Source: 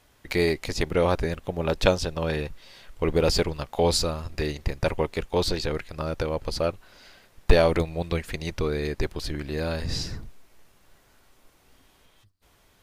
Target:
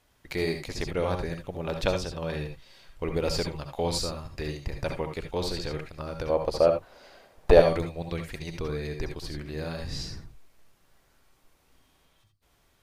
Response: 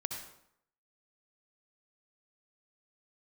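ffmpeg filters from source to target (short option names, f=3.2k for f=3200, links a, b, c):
-filter_complex "[0:a]asettb=1/sr,asplit=3[a][b][c];[a]atrim=end=6.294[d];[b]atrim=start=6.29:end=7.6,asetpts=PTS-STARTPTS,afade=t=in:d=0.004:c=qsin,afade=t=out:st=1.306:d=0.004:c=qsin,equalizer=f=600:w=0.71:g=12.5[e];[c]atrim=start=7.596[f];[d][e]acrossfade=d=0.004:c1=hsin:c2=qsin[g];[g][f]acrossfade=d=0.004:c1=qsin:c2=hsin[h];[1:a]atrim=start_sample=2205,atrim=end_sample=3969[i];[h][i]afir=irnorm=-1:irlink=0,volume=-5.5dB"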